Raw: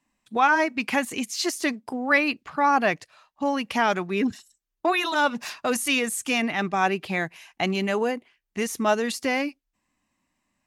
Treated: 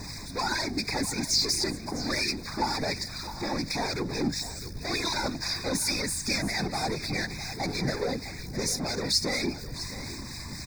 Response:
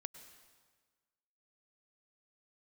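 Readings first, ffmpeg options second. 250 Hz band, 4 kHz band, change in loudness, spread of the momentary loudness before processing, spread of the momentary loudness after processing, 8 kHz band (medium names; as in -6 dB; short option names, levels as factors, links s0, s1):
-5.0 dB, +3.5 dB, -4.5 dB, 9 LU, 10 LU, +2.5 dB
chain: -filter_complex "[0:a]aeval=exprs='val(0)+0.5*0.0178*sgn(val(0))':c=same,bandreject=f=167.6:t=h:w=4,bandreject=f=335.2:t=h:w=4,volume=21.1,asoftclip=hard,volume=0.0473,equalizer=f=630:t=o:w=0.33:g=-5,equalizer=f=1250:t=o:w=0.33:g=-9,equalizer=f=5000:t=o:w=0.33:g=12,equalizer=f=12500:t=o:w=0.33:g=-9,aphaser=in_gain=1:out_gain=1:delay=3.8:decay=0.31:speed=1.9:type=triangular,acrossover=split=1400[s0][s1];[s0]aeval=exprs='val(0)*(1-0.5/2+0.5/2*cos(2*PI*4.2*n/s))':c=same[s2];[s1]aeval=exprs='val(0)*(1-0.5/2-0.5/2*cos(2*PI*4.2*n/s))':c=same[s3];[s2][s3]amix=inputs=2:normalize=0,aeval=exprs='val(0)+0.00794*(sin(2*PI*50*n/s)+sin(2*PI*2*50*n/s)/2+sin(2*PI*3*50*n/s)/3+sin(2*PI*4*50*n/s)/4+sin(2*PI*5*50*n/s)/5)':c=same,equalizer=f=4000:w=1.5:g=2,afftfilt=real='hypot(re,im)*cos(2*PI*random(0))':imag='hypot(re,im)*sin(2*PI*random(1))':win_size=512:overlap=0.75,asuperstop=centerf=3000:order=12:qfactor=2.8,aecho=1:1:656:0.2,volume=2.24"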